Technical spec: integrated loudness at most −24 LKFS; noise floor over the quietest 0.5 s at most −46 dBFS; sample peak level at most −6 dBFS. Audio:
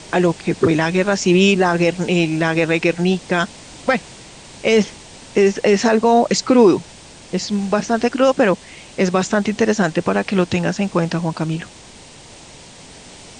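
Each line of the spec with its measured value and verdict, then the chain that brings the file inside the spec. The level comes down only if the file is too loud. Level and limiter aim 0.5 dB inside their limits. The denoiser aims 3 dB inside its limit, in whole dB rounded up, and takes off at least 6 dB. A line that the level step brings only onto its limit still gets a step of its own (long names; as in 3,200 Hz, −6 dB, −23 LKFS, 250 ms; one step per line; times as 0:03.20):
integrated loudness −17.5 LKFS: out of spec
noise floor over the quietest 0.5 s −41 dBFS: out of spec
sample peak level −4.0 dBFS: out of spec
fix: level −7 dB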